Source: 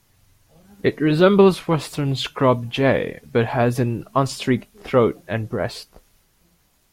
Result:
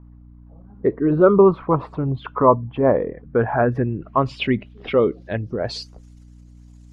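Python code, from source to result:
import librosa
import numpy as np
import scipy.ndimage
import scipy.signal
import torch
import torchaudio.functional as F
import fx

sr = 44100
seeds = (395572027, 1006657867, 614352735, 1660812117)

y = fx.envelope_sharpen(x, sr, power=1.5)
y = fx.add_hum(y, sr, base_hz=60, snr_db=23)
y = fx.filter_sweep_lowpass(y, sr, from_hz=1100.0, to_hz=7300.0, start_s=3.08, end_s=5.99, q=2.7)
y = y * librosa.db_to_amplitude(-1.0)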